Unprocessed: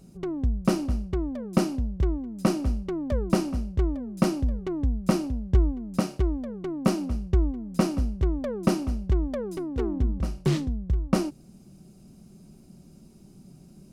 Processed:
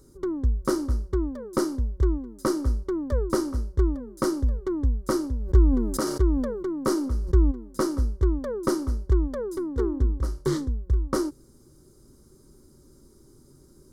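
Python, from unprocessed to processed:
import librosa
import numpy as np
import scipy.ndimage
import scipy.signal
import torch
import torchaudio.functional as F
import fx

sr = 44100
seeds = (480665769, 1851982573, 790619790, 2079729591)

y = fx.fixed_phaser(x, sr, hz=700.0, stages=6)
y = fx.sustainer(y, sr, db_per_s=44.0, at=(5.39, 7.5), fade=0.02)
y = y * 10.0 ** (3.5 / 20.0)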